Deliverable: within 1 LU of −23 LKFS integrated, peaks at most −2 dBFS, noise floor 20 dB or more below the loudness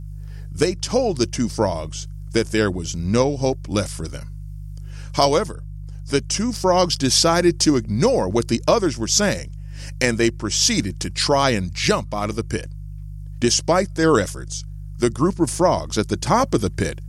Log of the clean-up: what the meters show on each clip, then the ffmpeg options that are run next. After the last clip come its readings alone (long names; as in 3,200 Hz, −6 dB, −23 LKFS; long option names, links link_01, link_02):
mains hum 50 Hz; hum harmonics up to 150 Hz; level of the hum −30 dBFS; integrated loudness −20.0 LKFS; sample peak −2.0 dBFS; target loudness −23.0 LKFS
→ -af "bandreject=frequency=50:width_type=h:width=4,bandreject=frequency=100:width_type=h:width=4,bandreject=frequency=150:width_type=h:width=4"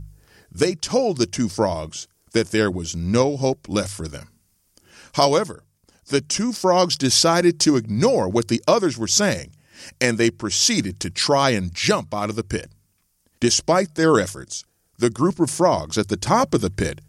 mains hum none found; integrated loudness −20.0 LKFS; sample peak −2.5 dBFS; target loudness −23.0 LKFS
→ -af "volume=-3dB"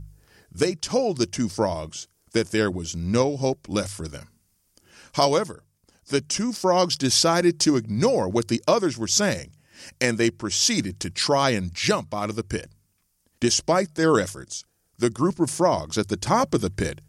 integrated loudness −23.0 LKFS; sample peak −5.5 dBFS; background noise floor −69 dBFS